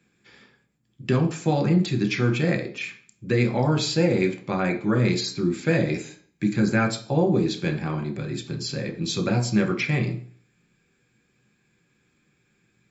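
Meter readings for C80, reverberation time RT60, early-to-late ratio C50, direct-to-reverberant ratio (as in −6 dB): 15.5 dB, 0.50 s, 11.5 dB, 3.0 dB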